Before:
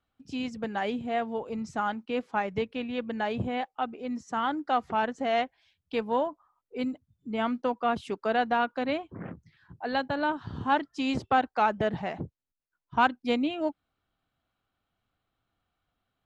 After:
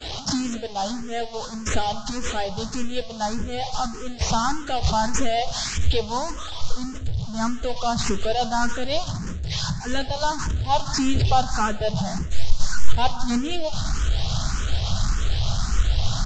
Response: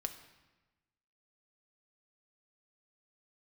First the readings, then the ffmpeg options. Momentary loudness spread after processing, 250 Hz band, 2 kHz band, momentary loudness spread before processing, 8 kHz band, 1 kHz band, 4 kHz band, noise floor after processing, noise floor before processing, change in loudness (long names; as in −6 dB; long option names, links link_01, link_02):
7 LU, +3.5 dB, +1.5 dB, 10 LU, can't be measured, +3.0 dB, +12.5 dB, −33 dBFS, −83 dBFS, +4.0 dB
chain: -filter_complex "[0:a]aeval=exprs='val(0)+0.5*0.0501*sgn(val(0))':channel_layout=same,aexciter=amount=9.3:drive=5.1:freq=3400,agate=range=-33dB:threshold=-13dB:ratio=3:detection=peak,asplit=2[link_01][link_02];[link_02]aeval=exprs='0.75*sin(PI/2*3.55*val(0)/0.75)':channel_layout=same,volume=-8dB[link_03];[link_01][link_03]amix=inputs=2:normalize=0,highshelf=frequency=5500:gain=-11,aresample=16000,aresample=44100,aecho=1:1:169:0.112,asubboost=boost=11:cutoff=91,asplit=2[link_04][link_05];[1:a]atrim=start_sample=2205,lowpass=2600[link_06];[link_05][link_06]afir=irnorm=-1:irlink=0,volume=0dB[link_07];[link_04][link_07]amix=inputs=2:normalize=0,asplit=2[link_08][link_09];[link_09]afreqshift=1.7[link_10];[link_08][link_10]amix=inputs=2:normalize=1,volume=-6.5dB"